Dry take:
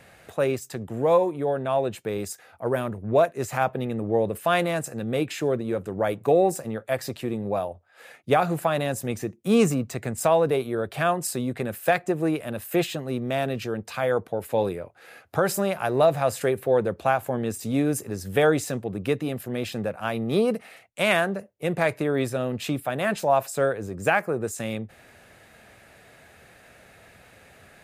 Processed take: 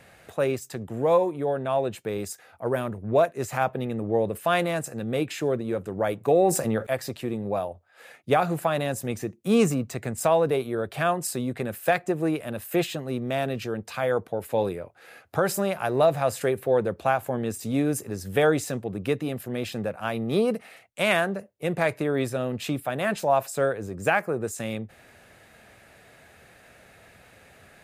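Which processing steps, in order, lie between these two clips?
0:06.32–0:06.87: envelope flattener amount 50%
level −1 dB

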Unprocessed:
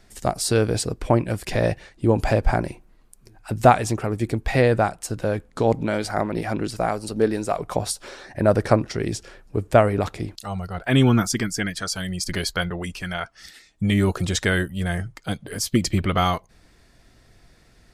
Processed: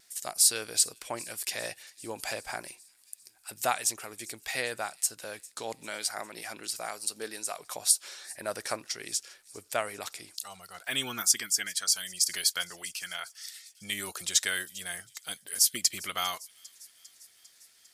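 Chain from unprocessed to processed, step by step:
first difference
pitch vibrato 0.83 Hz 13 cents
delay with a high-pass on its return 400 ms, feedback 67%, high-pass 4,300 Hz, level −20 dB
level +4.5 dB

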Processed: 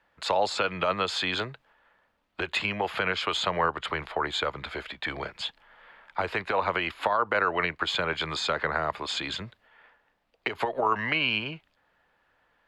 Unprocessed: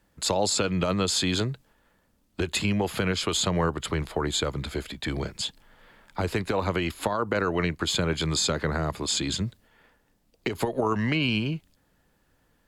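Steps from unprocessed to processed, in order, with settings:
three-way crossover with the lows and the highs turned down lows −17 dB, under 570 Hz, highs −23 dB, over 3,400 Hz
level +5 dB

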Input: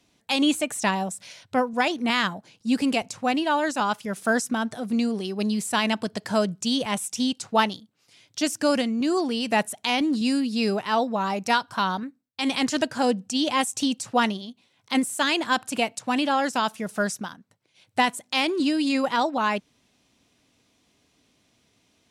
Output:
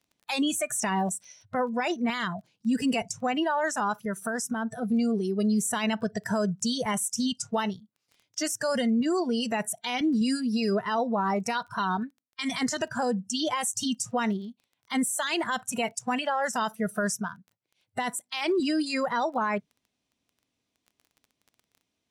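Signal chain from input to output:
noise reduction from a noise print of the clip's start 18 dB
surface crackle 11 per second −46 dBFS
brickwall limiter −21.5 dBFS, peak gain reduction 14 dB
0:04.03–0:04.83: downward compressor 2.5 to 1, threshold −31 dBFS, peak gain reduction 4.5 dB
level +2.5 dB

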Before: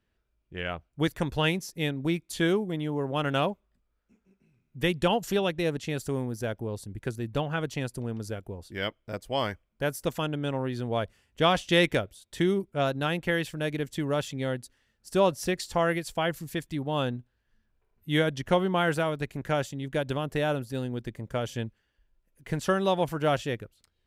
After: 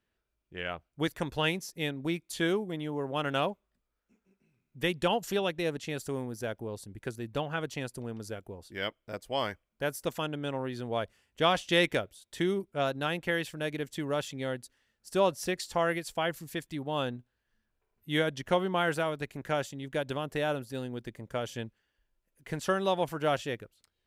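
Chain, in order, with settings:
low-shelf EQ 190 Hz −7.5 dB
level −2 dB

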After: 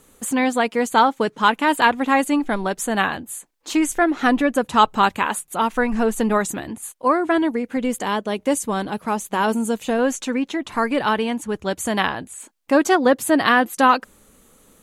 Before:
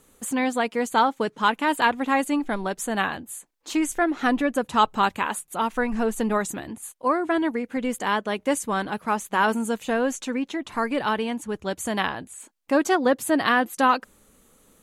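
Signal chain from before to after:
0:07.43–0:09.99: dynamic equaliser 1,600 Hz, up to −7 dB, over −36 dBFS, Q 0.81
level +4.5 dB

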